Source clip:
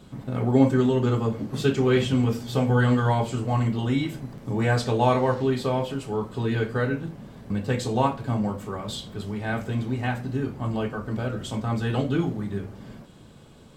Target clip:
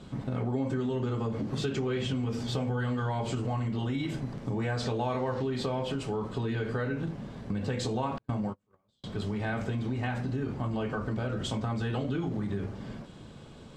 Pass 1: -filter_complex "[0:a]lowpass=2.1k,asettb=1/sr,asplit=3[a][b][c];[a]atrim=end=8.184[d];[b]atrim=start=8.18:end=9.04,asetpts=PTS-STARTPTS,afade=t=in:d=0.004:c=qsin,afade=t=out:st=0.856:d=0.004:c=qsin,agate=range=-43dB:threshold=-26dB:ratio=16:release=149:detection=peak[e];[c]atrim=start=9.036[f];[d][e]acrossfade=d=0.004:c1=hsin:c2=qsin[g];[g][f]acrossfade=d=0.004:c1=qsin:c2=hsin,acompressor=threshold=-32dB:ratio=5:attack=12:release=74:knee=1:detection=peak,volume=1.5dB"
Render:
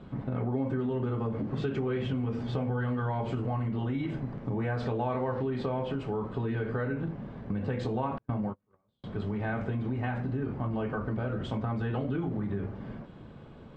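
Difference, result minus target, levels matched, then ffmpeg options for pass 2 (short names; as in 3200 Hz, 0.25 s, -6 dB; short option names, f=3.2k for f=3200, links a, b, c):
8000 Hz band -18.5 dB
-filter_complex "[0:a]lowpass=7.1k,asettb=1/sr,asplit=3[a][b][c];[a]atrim=end=8.184[d];[b]atrim=start=8.18:end=9.04,asetpts=PTS-STARTPTS,afade=t=in:d=0.004:c=qsin,afade=t=out:st=0.856:d=0.004:c=qsin,agate=range=-43dB:threshold=-26dB:ratio=16:release=149:detection=peak[e];[c]atrim=start=9.036[f];[d][e]acrossfade=d=0.004:c1=hsin:c2=qsin[g];[g][f]acrossfade=d=0.004:c1=qsin:c2=hsin,acompressor=threshold=-32dB:ratio=5:attack=12:release=74:knee=1:detection=peak,volume=1.5dB"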